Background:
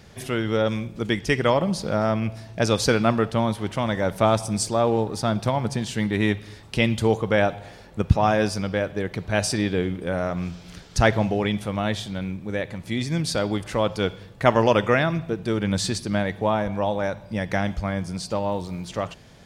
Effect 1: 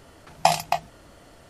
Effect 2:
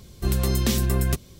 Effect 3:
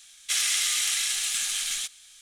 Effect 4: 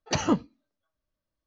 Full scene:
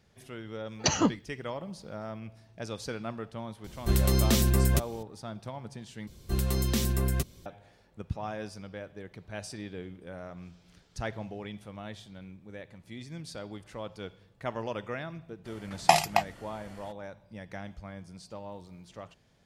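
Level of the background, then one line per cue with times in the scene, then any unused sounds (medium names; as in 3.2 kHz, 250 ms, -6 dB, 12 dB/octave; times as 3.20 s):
background -17 dB
0.73 s: add 4 -1.5 dB + treble shelf 5.1 kHz +11.5 dB
3.64 s: add 2 -1.5 dB
6.07 s: replace with 2 -5.5 dB
15.44 s: add 1 -2 dB, fades 0.02 s + peaking EQ 2 kHz +4.5 dB 0.65 oct
not used: 3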